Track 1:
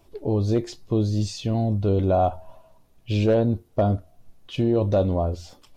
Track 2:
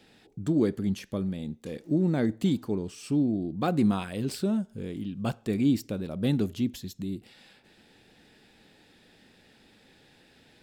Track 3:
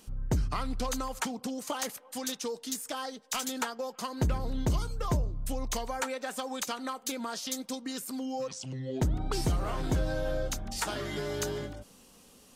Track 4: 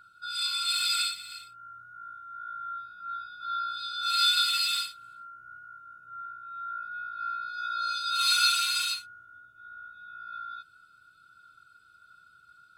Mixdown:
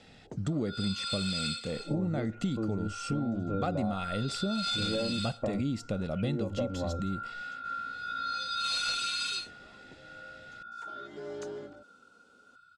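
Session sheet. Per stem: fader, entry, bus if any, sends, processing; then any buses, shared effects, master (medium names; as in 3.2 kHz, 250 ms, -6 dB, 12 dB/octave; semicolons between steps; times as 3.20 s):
-8.0 dB, 1.65 s, no send, steep low-pass 2.7 kHz 96 dB/octave; comb 3.7 ms
+2.0 dB, 0.00 s, no send, comb 1.5 ms, depth 49%
-15.0 dB, 0.00 s, no send, high-pass 220 Hz 6 dB/octave; peaking EQ 390 Hz +12.5 dB 2.9 oct; auto duck -18 dB, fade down 1.00 s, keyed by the second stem
-3.0 dB, 0.45 s, no send, one-sided clip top -22 dBFS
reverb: none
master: low-pass 8.2 kHz 24 dB/octave; compression 6:1, threshold -28 dBFS, peak gain reduction 11.5 dB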